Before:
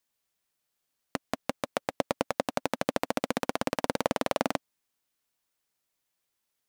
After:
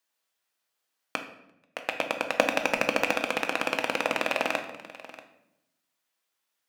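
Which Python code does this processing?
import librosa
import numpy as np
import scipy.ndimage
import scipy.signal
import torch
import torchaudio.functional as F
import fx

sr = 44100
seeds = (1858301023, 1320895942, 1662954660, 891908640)

p1 = fx.rattle_buzz(x, sr, strikes_db=-44.0, level_db=-14.0)
p2 = fx.highpass(p1, sr, hz=780.0, slope=6)
p3 = fx.high_shelf(p2, sr, hz=3800.0, db=-7.0)
p4 = fx.notch(p3, sr, hz=2200.0, q=29.0)
p5 = fx.leveller(p4, sr, passes=2, at=(2.31, 3.14))
p6 = fx.level_steps(p5, sr, step_db=13)
p7 = p5 + F.gain(torch.from_numpy(p6), 2.0).numpy()
p8 = fx.auto_swell(p7, sr, attack_ms=424.0, at=(1.26, 1.76), fade=0.02)
p9 = p8 + 10.0 ** (-17.5 / 20.0) * np.pad(p8, (int(636 * sr / 1000.0), 0))[:len(p8)]
y = fx.room_shoebox(p9, sr, seeds[0], volume_m3=250.0, walls='mixed', distance_m=0.63)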